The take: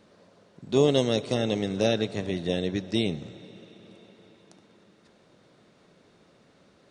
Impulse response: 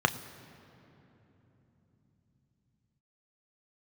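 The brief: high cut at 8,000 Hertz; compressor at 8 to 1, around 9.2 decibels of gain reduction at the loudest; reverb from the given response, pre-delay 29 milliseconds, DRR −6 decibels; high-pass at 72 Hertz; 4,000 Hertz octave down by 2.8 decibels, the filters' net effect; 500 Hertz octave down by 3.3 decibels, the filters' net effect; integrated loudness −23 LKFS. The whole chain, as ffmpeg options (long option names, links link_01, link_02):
-filter_complex "[0:a]highpass=72,lowpass=8000,equalizer=frequency=500:width_type=o:gain=-4,equalizer=frequency=4000:width_type=o:gain=-3,acompressor=threshold=-27dB:ratio=8,asplit=2[link_01][link_02];[1:a]atrim=start_sample=2205,adelay=29[link_03];[link_02][link_03]afir=irnorm=-1:irlink=0,volume=-6.5dB[link_04];[link_01][link_04]amix=inputs=2:normalize=0,volume=4.5dB"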